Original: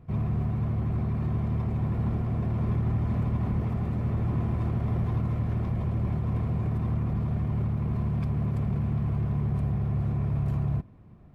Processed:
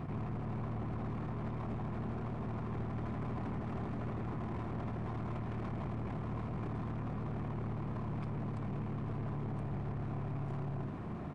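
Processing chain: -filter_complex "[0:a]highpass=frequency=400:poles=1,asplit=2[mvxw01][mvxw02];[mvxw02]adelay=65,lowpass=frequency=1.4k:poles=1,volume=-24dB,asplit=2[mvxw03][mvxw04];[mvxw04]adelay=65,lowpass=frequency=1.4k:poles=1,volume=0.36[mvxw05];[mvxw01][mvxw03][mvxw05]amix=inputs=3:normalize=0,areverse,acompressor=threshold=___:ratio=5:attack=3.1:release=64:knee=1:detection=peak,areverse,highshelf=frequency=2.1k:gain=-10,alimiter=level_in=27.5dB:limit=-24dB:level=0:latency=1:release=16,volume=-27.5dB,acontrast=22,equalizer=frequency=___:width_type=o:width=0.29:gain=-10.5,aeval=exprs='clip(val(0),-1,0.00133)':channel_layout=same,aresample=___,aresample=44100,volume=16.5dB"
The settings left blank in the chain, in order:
-52dB, 520, 22050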